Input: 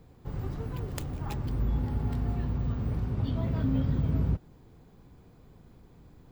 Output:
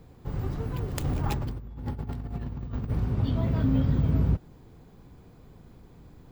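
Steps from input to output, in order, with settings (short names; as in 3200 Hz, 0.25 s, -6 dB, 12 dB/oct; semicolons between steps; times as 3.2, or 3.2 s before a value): 1.04–2.9 negative-ratio compressor -34 dBFS, ratio -0.5; gain +3.5 dB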